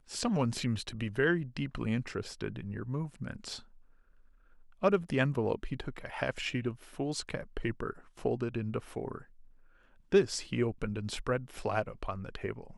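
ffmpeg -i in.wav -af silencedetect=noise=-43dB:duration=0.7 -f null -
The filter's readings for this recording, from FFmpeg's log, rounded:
silence_start: 3.60
silence_end: 4.82 | silence_duration: 1.23
silence_start: 9.22
silence_end: 10.12 | silence_duration: 0.91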